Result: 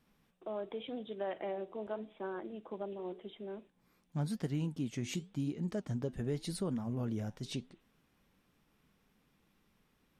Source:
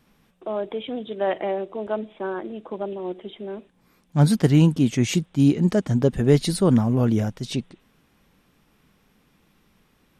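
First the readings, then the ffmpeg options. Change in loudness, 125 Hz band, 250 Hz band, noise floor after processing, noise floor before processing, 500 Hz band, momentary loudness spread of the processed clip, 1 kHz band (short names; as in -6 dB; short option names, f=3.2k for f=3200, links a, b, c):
-17.5 dB, -18.0 dB, -17.5 dB, -74 dBFS, -63 dBFS, -15.5 dB, 9 LU, -14.5 dB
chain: -af "acompressor=threshold=-24dB:ratio=3,flanger=delay=4.2:depth=5.7:regen=-83:speed=0.89:shape=sinusoidal,volume=-6.5dB"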